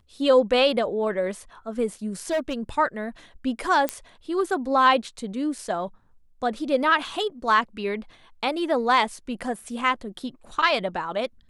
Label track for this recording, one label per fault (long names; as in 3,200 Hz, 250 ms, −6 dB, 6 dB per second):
2.200000	2.540000	clipping −20.5 dBFS
3.890000	3.890000	click −9 dBFS